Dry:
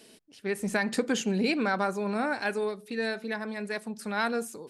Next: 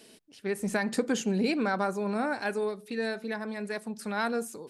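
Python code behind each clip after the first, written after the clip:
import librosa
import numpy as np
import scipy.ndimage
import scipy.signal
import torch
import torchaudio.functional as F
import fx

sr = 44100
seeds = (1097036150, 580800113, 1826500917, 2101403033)

y = fx.dynamic_eq(x, sr, hz=2700.0, q=0.72, threshold_db=-42.0, ratio=4.0, max_db=-4)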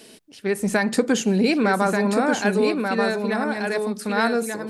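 y = x + 10.0 ** (-4.5 / 20.0) * np.pad(x, (int(1185 * sr / 1000.0), 0))[:len(x)]
y = F.gain(torch.from_numpy(y), 8.0).numpy()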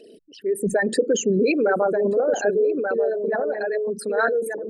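y = fx.envelope_sharpen(x, sr, power=3.0)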